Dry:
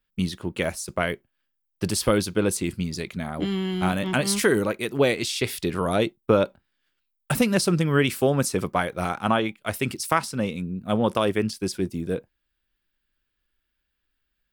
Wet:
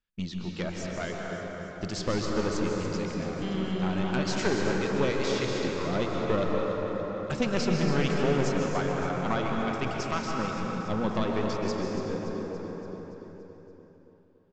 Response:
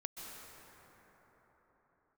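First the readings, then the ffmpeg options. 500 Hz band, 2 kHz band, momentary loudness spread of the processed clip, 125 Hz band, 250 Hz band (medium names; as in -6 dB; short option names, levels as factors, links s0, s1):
-4.0 dB, -5.5 dB, 10 LU, -4.0 dB, -4.0 dB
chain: -filter_complex "[0:a]aeval=exprs='(tanh(5.01*val(0)+0.65)-tanh(0.65))/5.01':c=same,aresample=16000,aresample=44100,aecho=1:1:285|570|855|1140|1425|1710|1995:0.316|0.183|0.106|0.0617|0.0358|0.0208|0.012[s0];[1:a]atrim=start_sample=2205[s1];[s0][s1]afir=irnorm=-1:irlink=0"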